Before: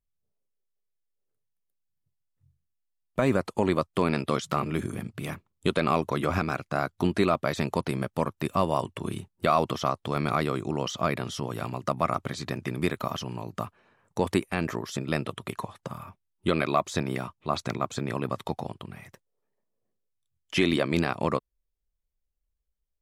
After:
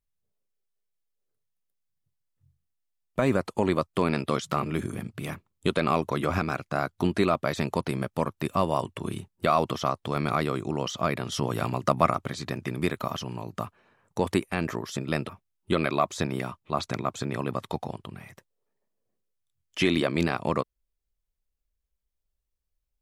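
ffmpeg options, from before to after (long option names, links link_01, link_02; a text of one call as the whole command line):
ffmpeg -i in.wav -filter_complex "[0:a]asplit=4[link_01][link_02][link_03][link_04];[link_01]atrim=end=11.322[link_05];[link_02]atrim=start=11.318:end=12.112,asetpts=PTS-STARTPTS,volume=4.5dB[link_06];[link_03]atrim=start=12.108:end=15.292[link_07];[link_04]atrim=start=16.048[link_08];[link_05][link_06]acrossfade=duration=0.004:curve1=hsin:curve2=hsin[link_09];[link_09][link_07]acrossfade=duration=0.004:curve1=hsin:curve2=hsin[link_10];[link_10][link_08]acrossfade=duration=0.004:curve1=hsin:curve2=hsin" out.wav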